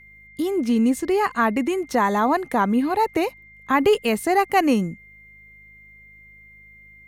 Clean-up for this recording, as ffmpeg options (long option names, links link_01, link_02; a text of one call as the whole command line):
ffmpeg -i in.wav -af "bandreject=frequency=52:width_type=h:width=4,bandreject=frequency=104:width_type=h:width=4,bandreject=frequency=156:width_type=h:width=4,bandreject=frequency=208:width_type=h:width=4,bandreject=frequency=2100:width=30" out.wav